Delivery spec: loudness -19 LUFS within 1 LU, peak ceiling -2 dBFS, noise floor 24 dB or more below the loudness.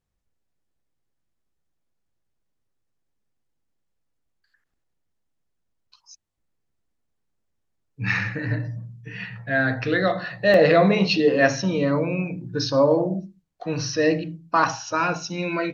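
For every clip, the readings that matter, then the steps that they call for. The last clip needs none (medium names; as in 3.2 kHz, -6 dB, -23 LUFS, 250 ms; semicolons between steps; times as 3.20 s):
dropouts 1; longest dropout 2.5 ms; loudness -22.0 LUFS; peak level -4.0 dBFS; loudness target -19.0 LUFS
-> interpolate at 10.54 s, 2.5 ms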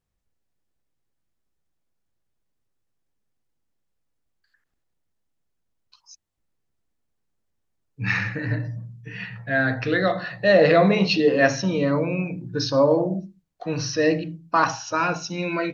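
dropouts 0; loudness -22.0 LUFS; peak level -4.0 dBFS; loudness target -19.0 LUFS
-> trim +3 dB; peak limiter -2 dBFS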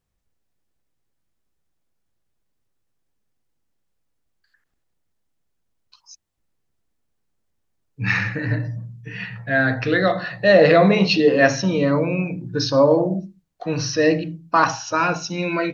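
loudness -19.0 LUFS; peak level -2.0 dBFS; noise floor -72 dBFS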